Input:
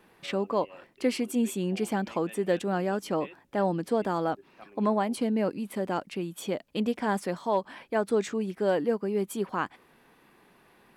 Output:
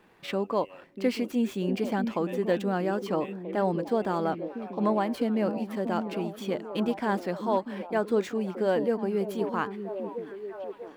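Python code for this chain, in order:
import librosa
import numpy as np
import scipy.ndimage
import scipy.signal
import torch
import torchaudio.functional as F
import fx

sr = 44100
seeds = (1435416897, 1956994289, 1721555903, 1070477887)

y = scipy.signal.medfilt(x, 5)
y = fx.echo_stepped(y, sr, ms=641, hz=260.0, octaves=0.7, feedback_pct=70, wet_db=-5.5)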